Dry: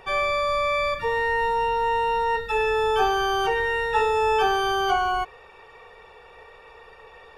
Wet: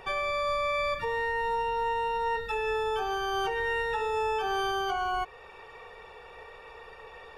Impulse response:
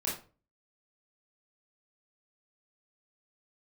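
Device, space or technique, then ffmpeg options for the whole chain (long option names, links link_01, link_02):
stacked limiters: -af "alimiter=limit=-16dB:level=0:latency=1:release=304,alimiter=limit=-22dB:level=0:latency=1:release=289"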